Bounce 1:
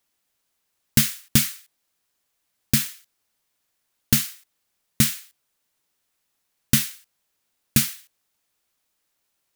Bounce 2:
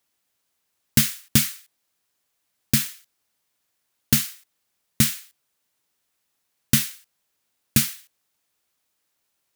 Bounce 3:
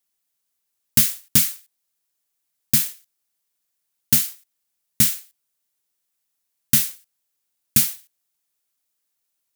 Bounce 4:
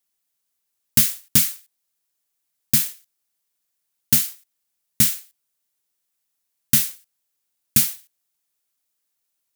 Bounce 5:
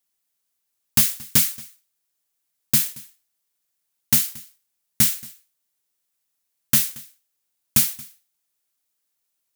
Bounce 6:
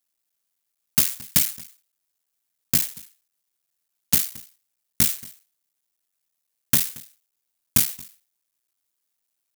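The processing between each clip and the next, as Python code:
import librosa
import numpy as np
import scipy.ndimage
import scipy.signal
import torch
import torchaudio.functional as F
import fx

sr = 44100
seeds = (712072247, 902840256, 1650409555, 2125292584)

y1 = scipy.signal.sosfilt(scipy.signal.butter(2, 47.0, 'highpass', fs=sr, output='sos'), x)
y2 = fx.high_shelf(y1, sr, hz=5200.0, db=10.0)
y2 = fx.leveller(y2, sr, passes=1)
y2 = y2 * librosa.db_to_amplitude(-7.5)
y3 = y2
y4 = 10.0 ** (-7.5 / 20.0) * (np.abs((y3 / 10.0 ** (-7.5 / 20.0) + 3.0) % 4.0 - 2.0) - 1.0)
y4 = y4 + 10.0 ** (-22.5 / 20.0) * np.pad(y4, (int(227 * sr / 1000.0), 0))[:len(y4)]
y5 = fx.cycle_switch(y4, sr, every=3, mode='muted')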